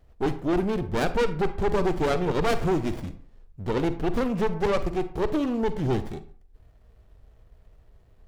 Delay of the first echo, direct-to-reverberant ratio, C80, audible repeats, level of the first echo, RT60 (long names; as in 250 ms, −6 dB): no echo audible, 11.0 dB, 17.0 dB, no echo audible, no echo audible, 0.50 s